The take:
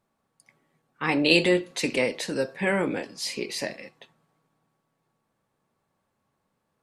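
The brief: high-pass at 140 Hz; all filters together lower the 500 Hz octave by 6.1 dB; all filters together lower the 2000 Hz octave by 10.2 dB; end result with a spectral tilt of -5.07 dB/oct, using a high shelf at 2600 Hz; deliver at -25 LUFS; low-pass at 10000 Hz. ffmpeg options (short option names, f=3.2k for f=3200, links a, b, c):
-af "highpass=140,lowpass=10k,equalizer=f=500:t=o:g=-7,equalizer=f=2k:t=o:g=-9,highshelf=f=2.6k:g=-8,volume=6.5dB"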